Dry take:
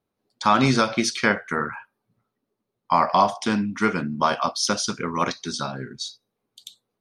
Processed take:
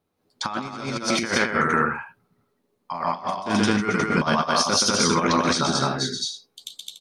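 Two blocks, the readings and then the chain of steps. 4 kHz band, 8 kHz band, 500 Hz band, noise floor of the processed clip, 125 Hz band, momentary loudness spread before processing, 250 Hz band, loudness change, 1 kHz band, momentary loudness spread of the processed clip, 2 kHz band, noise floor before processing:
+4.0 dB, +4.5 dB, +1.0 dB, -72 dBFS, +1.0 dB, 13 LU, +1.0 dB, +0.5 dB, -1.5 dB, 13 LU, +2.0 dB, -81 dBFS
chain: doubling 12 ms -10.5 dB; on a send: loudspeakers at several distances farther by 43 m -5 dB, 73 m 0 dB, 99 m -10 dB; on the sum: compressor with a negative ratio -22 dBFS, ratio -0.5

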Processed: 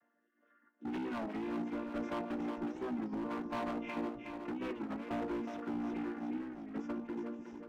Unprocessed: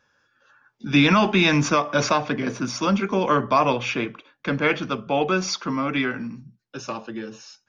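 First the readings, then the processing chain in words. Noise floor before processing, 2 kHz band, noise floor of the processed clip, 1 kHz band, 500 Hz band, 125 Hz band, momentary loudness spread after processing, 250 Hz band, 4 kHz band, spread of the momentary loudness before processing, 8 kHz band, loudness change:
-69 dBFS, -23.5 dB, -77 dBFS, -19.5 dB, -17.5 dB, -24.5 dB, 4 LU, -13.0 dB, -28.5 dB, 17 LU, no reading, -18.0 dB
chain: vocoder on a held chord major triad, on A#3; compression 4:1, threshold -32 dBFS, peak gain reduction 18 dB; boxcar filter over 10 samples; rotary cabinet horn 0.75 Hz, later 5 Hz, at 6.27 s; hard clipper -36 dBFS, distortion -8 dB; two-band feedback delay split 340 Hz, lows 625 ms, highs 366 ms, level -6 dB; warped record 33 1/3 rpm, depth 160 cents

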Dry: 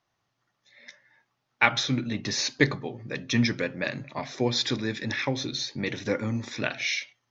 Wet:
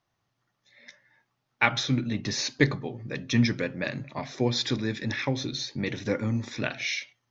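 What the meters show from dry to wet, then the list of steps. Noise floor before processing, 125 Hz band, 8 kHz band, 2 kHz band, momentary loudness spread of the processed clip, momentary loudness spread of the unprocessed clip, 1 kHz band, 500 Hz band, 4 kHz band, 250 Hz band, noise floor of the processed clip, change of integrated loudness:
-78 dBFS, +2.5 dB, no reading, -2.0 dB, 8 LU, 8 LU, -1.5 dB, -1.0 dB, -2.0 dB, +1.0 dB, -79 dBFS, -0.5 dB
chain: bass shelf 250 Hz +5.5 dB; trim -2 dB

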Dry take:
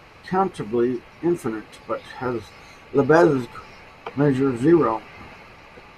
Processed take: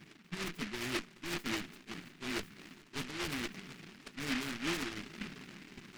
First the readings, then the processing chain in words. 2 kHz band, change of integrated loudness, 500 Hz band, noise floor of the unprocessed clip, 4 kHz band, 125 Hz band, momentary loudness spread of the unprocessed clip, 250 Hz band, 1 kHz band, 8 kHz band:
-8.5 dB, -18.0 dB, -25.5 dB, -47 dBFS, +2.5 dB, -19.5 dB, 18 LU, -19.0 dB, -21.0 dB, no reading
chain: Chebyshev high-pass 190 Hz, order 3; reverse; compression 16:1, threshold -33 dBFS, peak gain reduction 24 dB; reverse; FFT band-reject 450–7500 Hz; valve stage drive 38 dB, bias 0.5; static phaser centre 2.3 kHz, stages 6; flange 1.2 Hz, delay 0.7 ms, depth 7.2 ms, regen +31%; on a send: shuffle delay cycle 705 ms, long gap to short 1.5:1, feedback 60%, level -23.5 dB; on the sum: delay time shaken by noise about 2 kHz, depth 0.45 ms; trim +12 dB

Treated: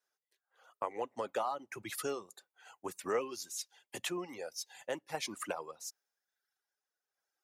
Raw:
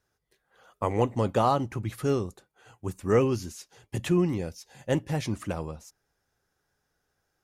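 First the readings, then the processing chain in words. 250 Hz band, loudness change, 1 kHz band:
-17.5 dB, -11.5 dB, -9.0 dB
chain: high-pass 540 Hz 12 dB/octave; reverb removal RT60 1.1 s; random-step tremolo; compression 3:1, threshold -45 dBFS, peak gain reduction 16.5 dB; three bands expanded up and down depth 40%; trim +7.5 dB

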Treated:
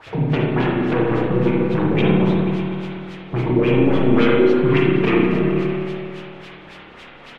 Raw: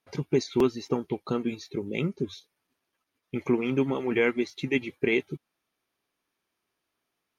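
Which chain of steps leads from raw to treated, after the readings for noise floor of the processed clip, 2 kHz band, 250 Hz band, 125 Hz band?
-41 dBFS, +7.5 dB, +12.0 dB, +16.0 dB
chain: coarse spectral quantiser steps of 15 dB; peaking EQ 110 Hz +8.5 dB 2.4 oct; comb 6.3 ms, depth 68%; transient shaper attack +6 dB, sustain 0 dB; in parallel at -4 dB: word length cut 6-bit, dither triangular; on the sum: hard clipper -20.5 dBFS, distortion -2 dB; LFO low-pass sine 3.6 Hz 240–3200 Hz; on a send: delay with an opening low-pass 123 ms, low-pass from 400 Hz, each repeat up 1 oct, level -3 dB; on the sum: spring tank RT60 1.2 s, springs 32/48 ms, chirp 55 ms, DRR -2.5 dB

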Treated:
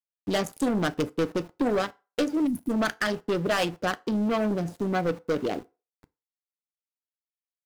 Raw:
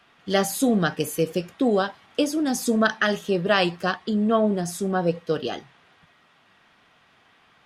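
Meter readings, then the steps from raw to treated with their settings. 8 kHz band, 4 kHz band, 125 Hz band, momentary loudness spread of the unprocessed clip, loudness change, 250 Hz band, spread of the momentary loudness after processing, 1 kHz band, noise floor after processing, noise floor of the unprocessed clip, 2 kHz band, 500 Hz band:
-9.5 dB, -5.5 dB, -3.5 dB, 7 LU, -4.0 dB, -3.0 dB, 4 LU, -4.0 dB, under -85 dBFS, -59 dBFS, -5.0 dB, -4.0 dB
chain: local Wiener filter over 41 samples; Chebyshev shaper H 3 -28 dB, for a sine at -7.5 dBFS; harmonic-percussive split harmonic -7 dB; in parallel at +2.5 dB: compression 6:1, threshold -34 dBFS, peak gain reduction 15.5 dB; on the sum: waveshaping leveller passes 1; saturation -20.5 dBFS, distortion -10 dB; time-frequency box 2.47–2.70 s, 360–9200 Hz -29 dB; small samples zeroed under -46 dBFS; FDN reverb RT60 0.31 s, low-frequency decay 0.7×, high-frequency decay 0.75×, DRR 14 dB

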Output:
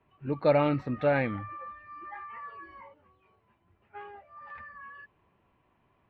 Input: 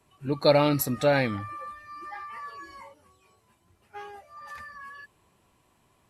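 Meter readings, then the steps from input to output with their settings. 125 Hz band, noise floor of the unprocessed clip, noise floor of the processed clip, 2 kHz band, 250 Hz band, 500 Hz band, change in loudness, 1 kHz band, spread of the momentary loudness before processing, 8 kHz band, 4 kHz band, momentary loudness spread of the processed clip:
-3.0 dB, -67 dBFS, -71 dBFS, -3.5 dB, -3.0 dB, -3.0 dB, -3.0 dB, -3.0 dB, 22 LU, under -40 dB, -14.5 dB, 22 LU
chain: low-pass 2.7 kHz 24 dB/octave; trim -3 dB

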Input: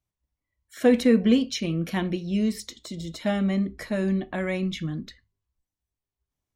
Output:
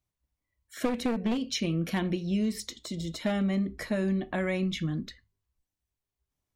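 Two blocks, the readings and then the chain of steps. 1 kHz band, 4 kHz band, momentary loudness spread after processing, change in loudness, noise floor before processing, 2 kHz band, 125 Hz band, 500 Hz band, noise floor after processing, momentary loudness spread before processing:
-2.5 dB, -2.0 dB, 8 LU, -5.5 dB, under -85 dBFS, -3.0 dB, -2.5 dB, -7.0 dB, under -85 dBFS, 16 LU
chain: one-sided wavefolder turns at -17.5 dBFS; compression 12:1, threshold -24 dBFS, peak gain reduction 11 dB

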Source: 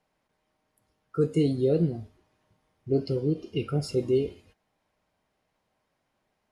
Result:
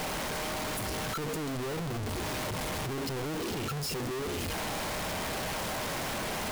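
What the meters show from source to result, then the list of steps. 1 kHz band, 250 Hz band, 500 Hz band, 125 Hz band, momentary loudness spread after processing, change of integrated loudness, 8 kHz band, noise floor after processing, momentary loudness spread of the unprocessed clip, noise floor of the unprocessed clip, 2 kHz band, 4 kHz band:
+15.0 dB, -6.5 dB, -7.0 dB, -5.5 dB, 1 LU, -6.0 dB, +16.0 dB, -34 dBFS, 8 LU, -77 dBFS, +16.0 dB, +10.5 dB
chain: one-bit comparator; trim -3.5 dB

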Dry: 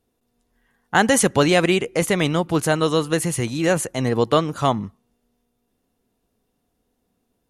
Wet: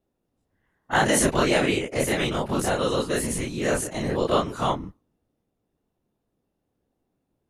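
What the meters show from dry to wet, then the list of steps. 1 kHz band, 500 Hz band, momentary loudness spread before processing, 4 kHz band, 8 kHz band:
-3.5 dB, -4.5 dB, 6 LU, -3.5 dB, -3.0 dB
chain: every event in the spectrogram widened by 60 ms; whisper effect; tape noise reduction on one side only decoder only; trim -8 dB

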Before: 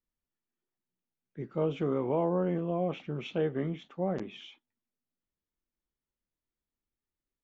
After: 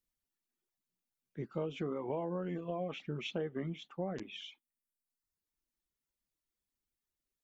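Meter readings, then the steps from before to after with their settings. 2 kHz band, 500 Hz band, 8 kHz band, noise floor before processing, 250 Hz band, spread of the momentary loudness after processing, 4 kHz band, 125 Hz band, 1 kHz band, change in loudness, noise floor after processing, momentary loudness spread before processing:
-2.0 dB, -7.5 dB, no reading, under -85 dBFS, -7.5 dB, 9 LU, +1.0 dB, -7.0 dB, -7.0 dB, -7.5 dB, under -85 dBFS, 15 LU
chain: reverb removal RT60 0.96 s; treble shelf 3.1 kHz +7 dB; compression 4:1, threshold -33 dBFS, peak gain reduction 7.5 dB; trim -1 dB

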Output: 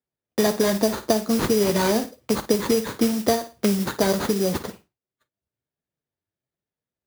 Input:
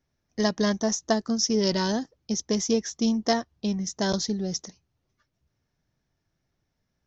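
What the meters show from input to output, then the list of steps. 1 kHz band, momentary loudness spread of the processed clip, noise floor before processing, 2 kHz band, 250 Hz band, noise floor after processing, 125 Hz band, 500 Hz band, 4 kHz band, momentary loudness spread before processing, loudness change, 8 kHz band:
+4.5 dB, 6 LU, -78 dBFS, +4.5 dB, +3.0 dB, under -85 dBFS, +3.5 dB, +6.5 dB, 0.0 dB, 8 LU, +4.0 dB, no reading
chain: peaking EQ 470 Hz +8 dB 1.3 oct; flange 1.2 Hz, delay 4.2 ms, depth 6.6 ms, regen +53%; band-stop 6.1 kHz, Q 15; sample-rate reducer 5.4 kHz, jitter 0%; high-pass 55 Hz; peaking EQ 3.3 kHz +4 dB 2.5 oct; on a send: flutter echo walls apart 9.4 m, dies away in 0.23 s; on the sum: modulation noise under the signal 14 dB; compression, threshold -25 dBFS, peak gain reduction 10.5 dB; expander -56 dBFS; three bands compressed up and down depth 40%; trim +8.5 dB

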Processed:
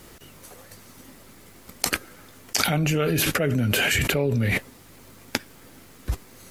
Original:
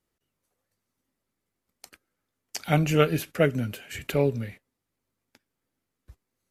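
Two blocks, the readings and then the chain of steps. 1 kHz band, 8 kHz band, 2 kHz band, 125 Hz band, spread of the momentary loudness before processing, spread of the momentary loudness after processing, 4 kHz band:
+1.5 dB, +13.0 dB, +9.5 dB, +3.0 dB, 15 LU, 13 LU, +11.5 dB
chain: level flattener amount 100%; trim -6 dB

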